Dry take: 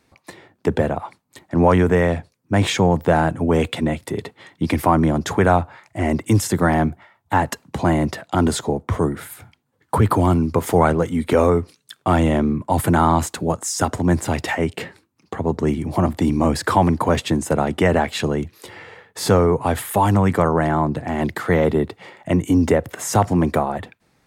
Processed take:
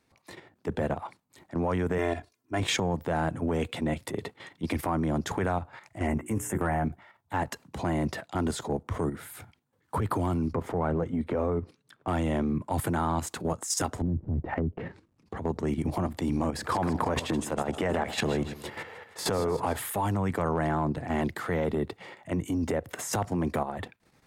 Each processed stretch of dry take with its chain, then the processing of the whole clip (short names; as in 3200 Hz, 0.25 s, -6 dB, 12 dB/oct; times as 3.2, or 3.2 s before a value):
1.98–2.6 HPF 170 Hz 6 dB/oct + comb 2.9 ms, depth 83%
6.07–6.85 Butterworth band-stop 4300 Hz, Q 1 + notches 60/120/180/240/300/360/420 Hz + doubler 14 ms -7 dB
10.53–12.08 LPF 1000 Hz 6 dB/oct + three-band squash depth 40%
14.01–15.37 CVSD 64 kbps + tilt -2.5 dB/oct + treble ducked by the level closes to 300 Hz, closed at -12 dBFS
16.49–19.77 bell 770 Hz +5 dB 3 oct + compressor, threshold -17 dBFS + split-band echo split 820 Hz, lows 95 ms, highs 0.157 s, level -13 dB
whole clip: compressor 5:1, threshold -20 dBFS; transient shaper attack -8 dB, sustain -1 dB; level quantiser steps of 9 dB